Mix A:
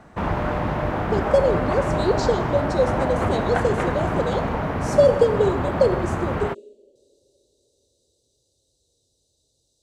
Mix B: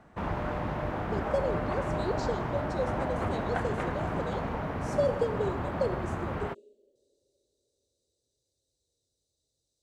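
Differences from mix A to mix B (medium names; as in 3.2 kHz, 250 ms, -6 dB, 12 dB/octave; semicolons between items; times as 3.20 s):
speech -12.0 dB; background -8.5 dB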